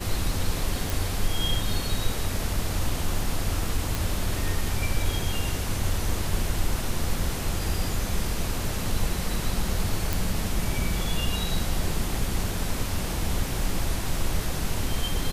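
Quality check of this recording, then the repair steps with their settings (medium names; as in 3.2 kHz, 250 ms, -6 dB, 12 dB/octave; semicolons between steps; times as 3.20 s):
0.90 s: pop
3.95 s: pop
10.13 s: pop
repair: de-click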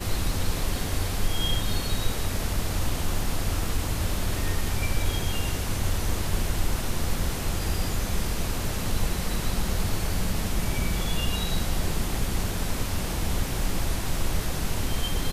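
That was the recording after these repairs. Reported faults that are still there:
nothing left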